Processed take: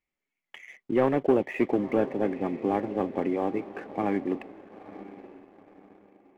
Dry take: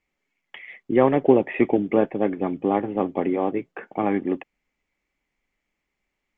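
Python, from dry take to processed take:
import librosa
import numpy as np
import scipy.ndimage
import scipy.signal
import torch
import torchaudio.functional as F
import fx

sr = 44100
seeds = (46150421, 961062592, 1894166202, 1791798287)

y = fx.echo_diffused(x, sr, ms=918, feedback_pct=44, wet_db=-15)
y = fx.leveller(y, sr, passes=1)
y = F.gain(torch.from_numpy(y), -8.0).numpy()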